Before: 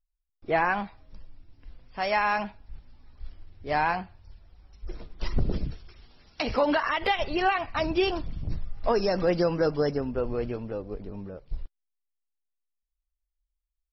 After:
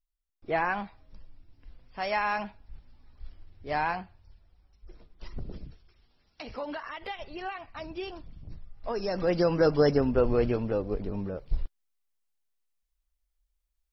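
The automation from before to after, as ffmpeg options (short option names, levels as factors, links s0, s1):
-af "volume=5.01,afade=t=out:st=3.86:d=1.02:silence=0.354813,afade=t=in:st=8.78:d=0.4:silence=0.375837,afade=t=in:st=9.18:d=0.85:silence=0.354813"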